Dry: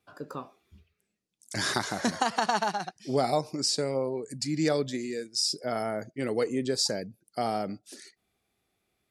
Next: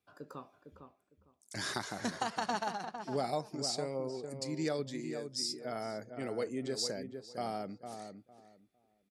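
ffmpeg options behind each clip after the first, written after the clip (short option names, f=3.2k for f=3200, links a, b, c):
-filter_complex "[0:a]asplit=2[a][b];[b]adelay=455,lowpass=f=1.4k:p=1,volume=-7dB,asplit=2[c][d];[d]adelay=455,lowpass=f=1.4k:p=1,volume=0.21,asplit=2[e][f];[f]adelay=455,lowpass=f=1.4k:p=1,volume=0.21[g];[a][c][e][g]amix=inputs=4:normalize=0,volume=-8.5dB"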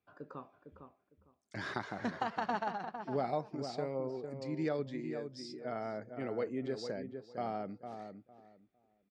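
-af "lowpass=2.5k"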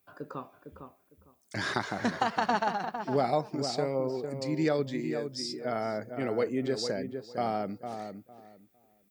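-af "aemphasis=mode=production:type=50fm,volume=7.5dB"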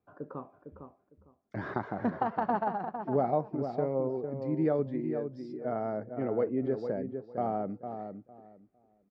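-af "lowpass=1k"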